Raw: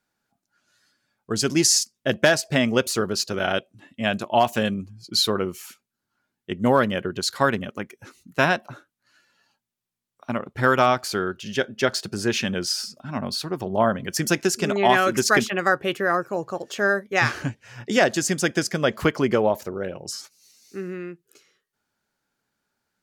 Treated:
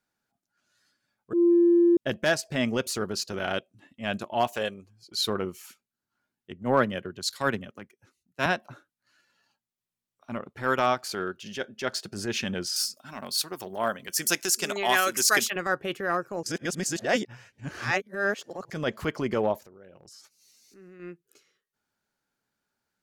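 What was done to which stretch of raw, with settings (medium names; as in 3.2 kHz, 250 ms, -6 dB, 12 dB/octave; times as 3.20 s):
1.33–1.97 s: bleep 344 Hz -11.5 dBFS
4.47–5.19 s: resonant low shelf 330 Hz -8.5 dB, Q 1.5
6.52–8.46 s: three bands expanded up and down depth 70%
10.51–12.13 s: high-pass 160 Hz 6 dB/octave
12.76–15.56 s: RIAA curve recording
16.43–18.70 s: reverse
19.58–21.00 s: compression 4:1, threshold -44 dBFS
whole clip: transient shaper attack -8 dB, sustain -3 dB; trim -4 dB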